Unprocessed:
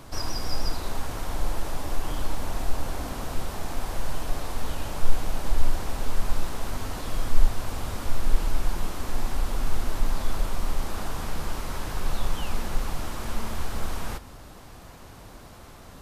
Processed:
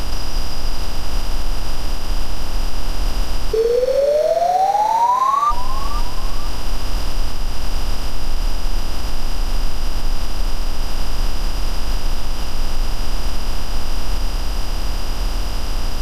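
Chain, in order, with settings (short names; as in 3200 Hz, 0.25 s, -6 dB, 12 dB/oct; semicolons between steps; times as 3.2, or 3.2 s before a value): per-bin compression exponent 0.2; compressor, threshold -11 dBFS, peak gain reduction 6 dB; 3.52–5.5 ring modulator 430 Hz -> 1200 Hz; darkening echo 0.483 s, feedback 39%, level -13 dB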